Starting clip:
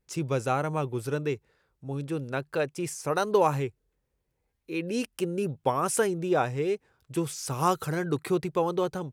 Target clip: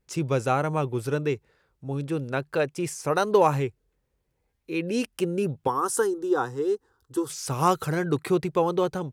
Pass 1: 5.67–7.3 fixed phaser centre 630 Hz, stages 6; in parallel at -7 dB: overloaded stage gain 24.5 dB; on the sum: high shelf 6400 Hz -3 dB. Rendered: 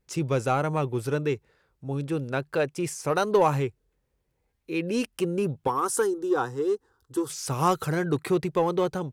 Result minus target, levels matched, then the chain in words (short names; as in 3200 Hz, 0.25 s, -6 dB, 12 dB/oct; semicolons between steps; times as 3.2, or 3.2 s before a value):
overloaded stage: distortion +23 dB
5.67–7.3 fixed phaser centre 630 Hz, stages 6; in parallel at -7 dB: overloaded stage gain 13.5 dB; on the sum: high shelf 6400 Hz -3 dB